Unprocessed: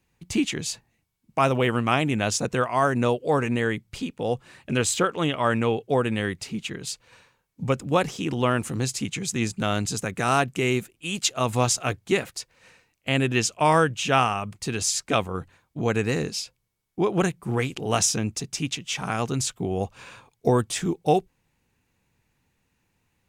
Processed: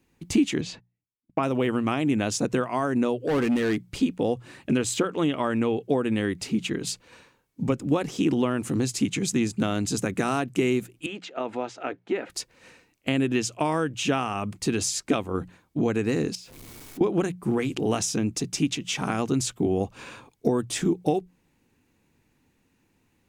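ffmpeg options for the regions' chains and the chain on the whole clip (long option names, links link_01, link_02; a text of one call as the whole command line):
ffmpeg -i in.wav -filter_complex "[0:a]asettb=1/sr,asplit=3[link_01][link_02][link_03];[link_01]atrim=end=0.614[link_04];[link_02]atrim=start=0.61:end=1.43,asetpts=PTS-STARTPTS,afade=type=in:duration=0.004:curve=qsin,afade=type=out:start_time=0.816:duration=0.004:curve=qsin,lowpass=3300,agate=range=-25dB:threshold=-53dB:ratio=16:release=100:detection=peak[link_05];[link_03]atrim=start=1.426[link_06];[link_04][link_05]acrossfade=duration=0.004:curve1=hsin:curve2=qsin[link_07];[link_07][link_06]acrossfade=duration=0.004:curve1=qsin:curve2=hsin,asettb=1/sr,asplit=3[link_08][link_09][link_10];[link_08]atrim=end=3.244[link_11];[link_09]atrim=start=3.24:end=3.85,asetpts=PTS-STARTPTS,afade=type=in:duration=0.004:curve=qsin,afade=type=out:start_time=0.606:duration=0.004:curve=qsin,lowshelf=frequency=73:gain=-10.5,asoftclip=type=hard:threshold=-25.5dB[link_12];[link_10]atrim=start=3.846[link_13];[link_11][link_12]acrossfade=duration=0.004:curve1=hsin:curve2=qsin[link_14];[link_14][link_13]acrossfade=duration=0.004:curve1=qsin:curve2=hsin,asettb=1/sr,asplit=3[link_15][link_16][link_17];[link_15]atrim=end=11.064[link_18];[link_16]atrim=start=11.06:end=12.3,asetpts=PTS-STARTPTS,afade=type=in:duration=0.004:curve=qsin,afade=type=out:start_time=1.236:duration=0.004:curve=qsin,acompressor=threshold=-27dB:ratio=2.5:attack=3.2:release=140:knee=1:detection=peak,highpass=380,lowpass=2100,bandreject=frequency=1100:width=7.2[link_19];[link_17]atrim=start=12.296[link_20];[link_18][link_19]acrossfade=duration=0.004:curve1=hsin:curve2=qsin[link_21];[link_21][link_20]acrossfade=duration=0.004:curve1=qsin:curve2=hsin,asettb=1/sr,asplit=3[link_22][link_23][link_24];[link_22]atrim=end=16.354[link_25];[link_23]atrim=start=16.35:end=17.01,asetpts=PTS-STARTPTS,afade=type=in:duration=0.004:curve=qsin,afade=type=out:start_time=0.656:duration=0.004:curve=qsin,aeval=exprs='val(0)+0.5*0.00944*sgn(val(0))':channel_layout=same,acompressor=threshold=-46dB:ratio=4:attack=3.2:release=140:knee=1:detection=peak[link_26];[link_24]atrim=start=17.006[link_27];[link_25][link_26]acrossfade=duration=0.004:curve1=hsin:curve2=qsin[link_28];[link_28][link_27]acrossfade=duration=0.004:curve1=qsin:curve2=hsin,acompressor=threshold=-26dB:ratio=6,equalizer=frequency=290:width=1.3:gain=9,bandreject=frequency=60:width_type=h:width=6,bandreject=frequency=120:width_type=h:width=6,bandreject=frequency=180:width_type=h:width=6,volume=1.5dB" out.wav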